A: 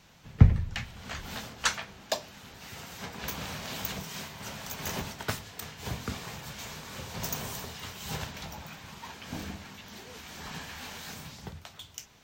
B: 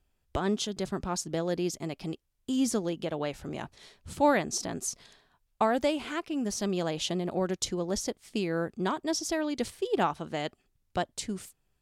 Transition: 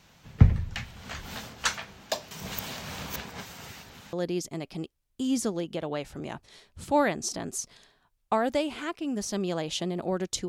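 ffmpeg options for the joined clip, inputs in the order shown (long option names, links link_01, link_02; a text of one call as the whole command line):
ffmpeg -i cue0.wav -i cue1.wav -filter_complex "[0:a]apad=whole_dur=10.48,atrim=end=10.48,asplit=2[link_01][link_02];[link_01]atrim=end=2.312[link_03];[link_02]atrim=start=2.308:end=4.132,asetpts=PTS-STARTPTS,areverse[link_04];[1:a]atrim=start=1.418:end=7.77[link_05];[link_03][link_04]acrossfade=duration=0.004:curve1=hsin:curve2=hsin[link_06];[link_06][link_05]acrossfade=duration=0.004:curve1=hsin:curve2=hsin" out.wav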